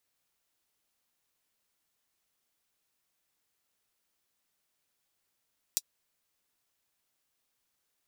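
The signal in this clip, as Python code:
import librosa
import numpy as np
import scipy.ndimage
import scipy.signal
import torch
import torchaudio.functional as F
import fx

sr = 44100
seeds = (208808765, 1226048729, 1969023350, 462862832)

y = fx.drum_hat(sr, length_s=0.24, from_hz=5000.0, decay_s=0.05)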